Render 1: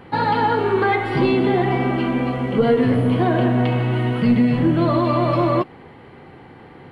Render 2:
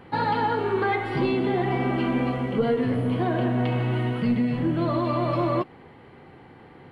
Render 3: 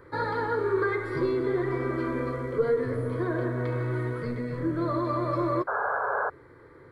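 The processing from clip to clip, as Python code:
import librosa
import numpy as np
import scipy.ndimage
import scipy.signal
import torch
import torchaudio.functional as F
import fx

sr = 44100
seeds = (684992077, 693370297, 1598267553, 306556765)

y1 = fx.rider(x, sr, range_db=10, speed_s=0.5)
y1 = F.gain(torch.from_numpy(y1), -6.0).numpy()
y2 = fx.fixed_phaser(y1, sr, hz=770.0, stages=6)
y2 = fx.spec_paint(y2, sr, seeds[0], shape='noise', start_s=5.67, length_s=0.63, low_hz=400.0, high_hz=1700.0, level_db=-28.0)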